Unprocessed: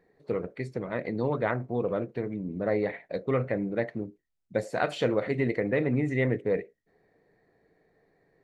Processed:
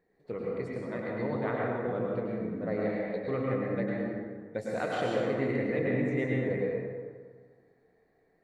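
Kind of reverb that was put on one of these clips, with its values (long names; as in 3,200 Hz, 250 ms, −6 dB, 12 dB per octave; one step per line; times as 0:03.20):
dense smooth reverb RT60 1.7 s, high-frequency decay 0.55×, pre-delay 90 ms, DRR −3.5 dB
level −7.5 dB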